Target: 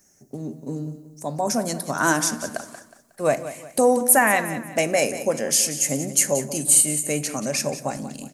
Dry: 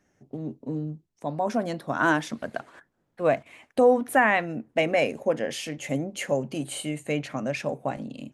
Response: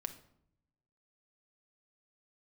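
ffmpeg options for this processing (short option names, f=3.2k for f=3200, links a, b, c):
-filter_complex "[0:a]aecho=1:1:182|364|546|728:0.224|0.0828|0.0306|0.0113,asplit=2[a][b];[1:a]atrim=start_sample=2205[c];[b][c]afir=irnorm=-1:irlink=0,volume=1.5dB[d];[a][d]amix=inputs=2:normalize=0,aexciter=amount=11.3:drive=3:freq=4.9k,volume=-4dB"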